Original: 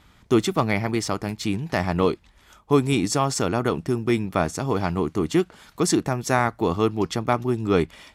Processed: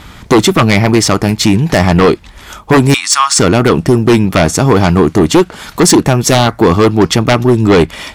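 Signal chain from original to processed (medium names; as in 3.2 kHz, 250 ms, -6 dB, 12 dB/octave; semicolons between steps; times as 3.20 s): 2.94–3.39 s: elliptic band-pass 1.1–9.9 kHz, stop band 40 dB; in parallel at 0 dB: compression, threshold -31 dBFS, peak gain reduction 17 dB; on the sum: sine folder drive 9 dB, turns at -4.5 dBFS; trim +2.5 dB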